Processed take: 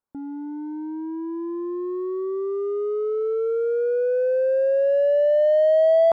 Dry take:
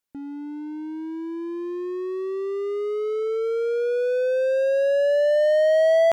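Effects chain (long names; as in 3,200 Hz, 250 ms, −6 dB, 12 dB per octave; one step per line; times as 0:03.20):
high shelf with overshoot 1,700 Hz −13.5 dB, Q 1.5
notch filter 2,700 Hz, Q 11
in parallel at −7 dB: soft clipping −23 dBFS, distortion −9 dB
on the sum: level −2 dB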